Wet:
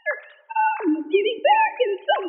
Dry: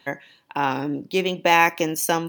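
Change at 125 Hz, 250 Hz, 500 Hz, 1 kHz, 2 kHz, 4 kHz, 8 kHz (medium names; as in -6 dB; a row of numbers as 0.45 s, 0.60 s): under -30 dB, 0.0 dB, +3.5 dB, +2.0 dB, -2.5 dB, -1.5 dB, under -40 dB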